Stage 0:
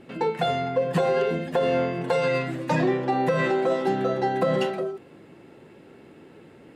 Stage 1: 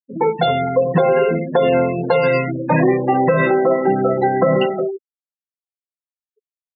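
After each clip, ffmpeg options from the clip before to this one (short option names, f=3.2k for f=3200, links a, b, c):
-af "afftfilt=real='re*gte(hypot(re,im),0.0501)':imag='im*gte(hypot(re,im),0.0501)':win_size=1024:overlap=0.75,afftdn=nr=24:nf=-45,volume=8dB"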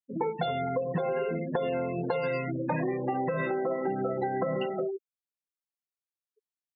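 -af "acompressor=threshold=-21dB:ratio=6,volume=-6dB"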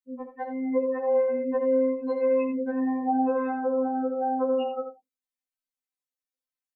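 -af "aecho=1:1:80:0.376,afftfilt=real='re*3.46*eq(mod(b,12),0)':imag='im*3.46*eq(mod(b,12),0)':win_size=2048:overlap=0.75"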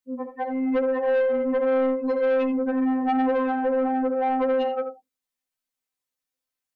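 -af "asoftclip=type=tanh:threshold=-24dB,volume=6dB"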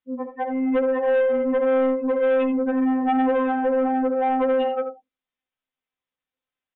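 -af "aresample=8000,aresample=44100,volume=2dB"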